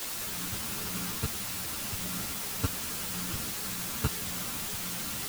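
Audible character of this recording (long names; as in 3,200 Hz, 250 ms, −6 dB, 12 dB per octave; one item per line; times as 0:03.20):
a buzz of ramps at a fixed pitch in blocks of 32 samples
tremolo saw up 0.86 Hz, depth 55%
a quantiser's noise floor 6 bits, dither triangular
a shimmering, thickened sound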